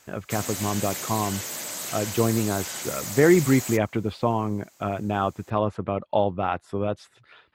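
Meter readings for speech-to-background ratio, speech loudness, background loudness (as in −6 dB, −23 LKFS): 6.0 dB, −25.5 LKFS, −31.5 LKFS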